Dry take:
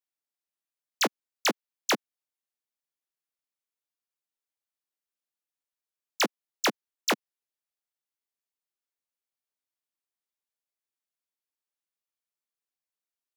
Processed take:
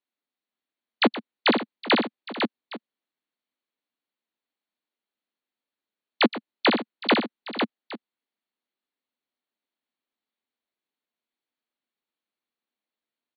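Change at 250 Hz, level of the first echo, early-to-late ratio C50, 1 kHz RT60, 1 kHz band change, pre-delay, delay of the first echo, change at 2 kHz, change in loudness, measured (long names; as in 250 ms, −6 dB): +11.5 dB, −14.5 dB, no reverb audible, no reverb audible, +6.0 dB, no reverb audible, 121 ms, +5.5 dB, +4.5 dB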